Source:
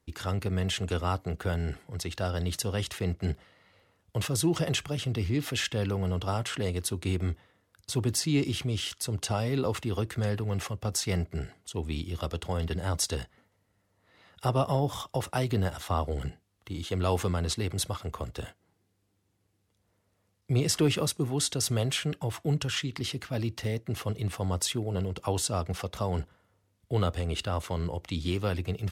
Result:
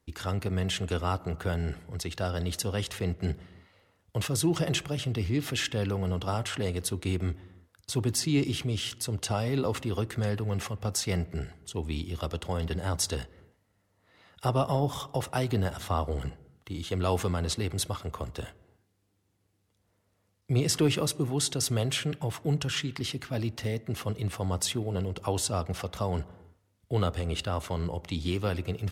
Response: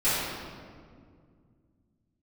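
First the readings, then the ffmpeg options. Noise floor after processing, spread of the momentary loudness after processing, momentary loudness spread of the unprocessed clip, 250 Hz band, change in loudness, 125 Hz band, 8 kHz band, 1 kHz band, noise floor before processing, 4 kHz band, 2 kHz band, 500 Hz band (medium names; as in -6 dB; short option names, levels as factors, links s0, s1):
-73 dBFS, 8 LU, 8 LU, +0.5 dB, 0.0 dB, 0.0 dB, 0.0 dB, 0.0 dB, -74 dBFS, 0.0 dB, 0.0 dB, 0.0 dB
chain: -filter_complex "[0:a]asplit=2[s0][s1];[1:a]atrim=start_sample=2205,afade=t=out:st=0.41:d=0.01,atrim=end_sample=18522,lowpass=2200[s2];[s1][s2]afir=irnorm=-1:irlink=0,volume=0.0251[s3];[s0][s3]amix=inputs=2:normalize=0"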